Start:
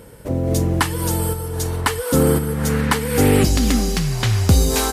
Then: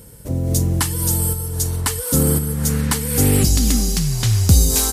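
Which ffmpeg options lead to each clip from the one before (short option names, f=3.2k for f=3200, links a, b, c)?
-af "bass=f=250:g=9,treble=f=4k:g=14,volume=-7dB"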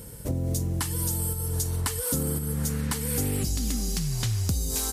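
-af "acompressor=threshold=-25dB:ratio=6"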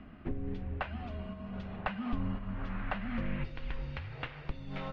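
-af "highpass=f=220:t=q:w=0.5412,highpass=f=220:t=q:w=1.307,lowpass=f=2.9k:t=q:w=0.5176,lowpass=f=2.9k:t=q:w=0.7071,lowpass=f=2.9k:t=q:w=1.932,afreqshift=-250"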